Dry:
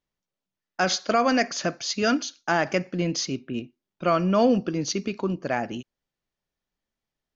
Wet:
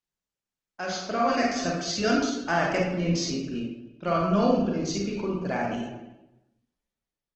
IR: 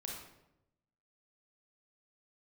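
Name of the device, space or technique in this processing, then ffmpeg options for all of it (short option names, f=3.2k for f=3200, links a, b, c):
speakerphone in a meeting room: -filter_complex "[1:a]atrim=start_sample=2205[a];[0:a][a]afir=irnorm=-1:irlink=0,asplit=2[b][c];[c]adelay=320,highpass=300,lowpass=3.4k,asoftclip=type=hard:threshold=-16dB,volume=-23dB[d];[b][d]amix=inputs=2:normalize=0,dynaudnorm=f=350:g=7:m=11dB,volume=-7.5dB" -ar 48000 -c:a libopus -b:a 16k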